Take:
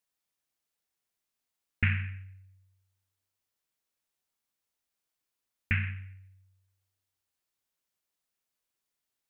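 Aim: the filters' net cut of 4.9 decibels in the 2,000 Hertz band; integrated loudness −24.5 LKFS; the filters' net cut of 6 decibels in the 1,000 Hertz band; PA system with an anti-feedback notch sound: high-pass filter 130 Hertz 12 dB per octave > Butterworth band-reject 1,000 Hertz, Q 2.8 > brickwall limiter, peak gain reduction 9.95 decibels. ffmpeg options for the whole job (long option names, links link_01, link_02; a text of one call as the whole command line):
ffmpeg -i in.wav -af "highpass=130,asuperstop=centerf=1000:order=8:qfactor=2.8,equalizer=frequency=1000:width_type=o:gain=-6,equalizer=frequency=2000:width_type=o:gain=-4.5,volume=18.5dB,alimiter=limit=-10dB:level=0:latency=1" out.wav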